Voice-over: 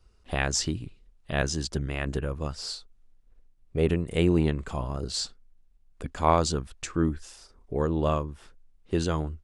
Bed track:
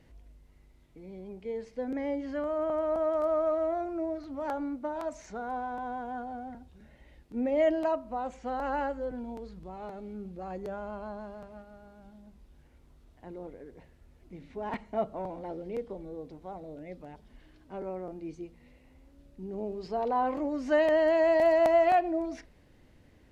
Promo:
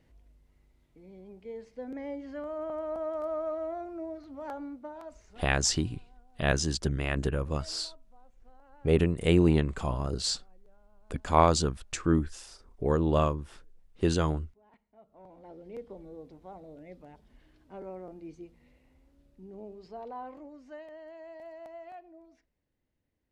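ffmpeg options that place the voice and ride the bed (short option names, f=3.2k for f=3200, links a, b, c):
-filter_complex "[0:a]adelay=5100,volume=0.5dB[a];[1:a]volume=17.5dB,afade=t=out:st=4.64:d=0.94:silence=0.0794328,afade=t=in:st=15.04:d=0.94:silence=0.0707946,afade=t=out:st=18.63:d=2.23:silence=0.11885[b];[a][b]amix=inputs=2:normalize=0"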